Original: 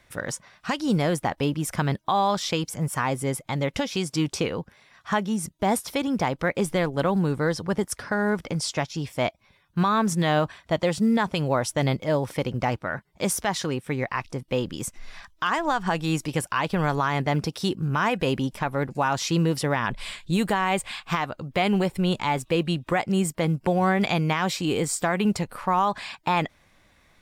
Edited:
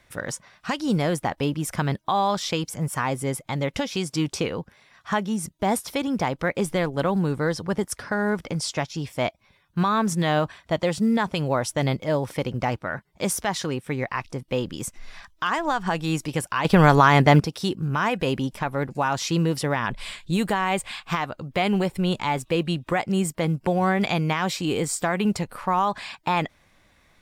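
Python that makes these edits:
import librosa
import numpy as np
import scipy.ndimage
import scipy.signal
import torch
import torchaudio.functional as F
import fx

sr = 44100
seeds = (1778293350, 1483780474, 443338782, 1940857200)

y = fx.edit(x, sr, fx.clip_gain(start_s=16.65, length_s=0.75, db=9.0), tone=tone)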